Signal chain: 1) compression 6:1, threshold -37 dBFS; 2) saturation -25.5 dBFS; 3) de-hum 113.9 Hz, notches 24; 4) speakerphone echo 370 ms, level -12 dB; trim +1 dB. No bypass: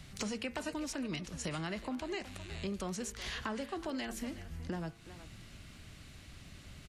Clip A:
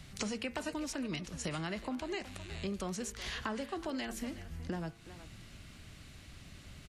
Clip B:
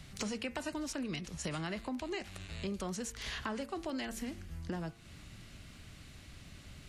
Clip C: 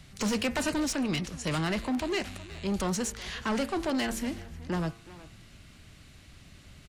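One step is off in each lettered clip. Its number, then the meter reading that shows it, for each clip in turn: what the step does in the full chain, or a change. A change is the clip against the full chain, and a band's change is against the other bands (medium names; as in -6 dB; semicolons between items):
2, distortion -27 dB; 4, echo-to-direct -20.0 dB to none; 1, mean gain reduction 7.0 dB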